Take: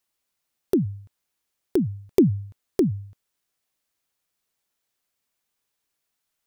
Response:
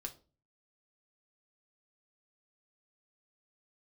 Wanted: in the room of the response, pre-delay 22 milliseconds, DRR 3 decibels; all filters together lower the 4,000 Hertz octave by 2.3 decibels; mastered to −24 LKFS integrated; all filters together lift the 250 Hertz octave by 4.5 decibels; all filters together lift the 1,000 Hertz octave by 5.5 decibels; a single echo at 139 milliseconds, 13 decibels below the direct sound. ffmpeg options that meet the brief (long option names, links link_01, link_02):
-filter_complex "[0:a]equalizer=frequency=250:width_type=o:gain=5.5,equalizer=frequency=1000:width_type=o:gain=7,equalizer=frequency=4000:width_type=o:gain=-3.5,aecho=1:1:139:0.224,asplit=2[link_01][link_02];[1:a]atrim=start_sample=2205,adelay=22[link_03];[link_02][link_03]afir=irnorm=-1:irlink=0,volume=-0.5dB[link_04];[link_01][link_04]amix=inputs=2:normalize=0,volume=-5dB"